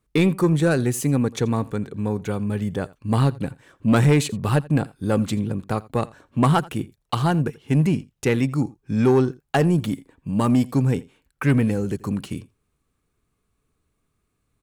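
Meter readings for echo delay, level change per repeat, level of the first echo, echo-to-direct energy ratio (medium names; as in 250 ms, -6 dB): 84 ms, no regular repeats, -22.0 dB, -22.0 dB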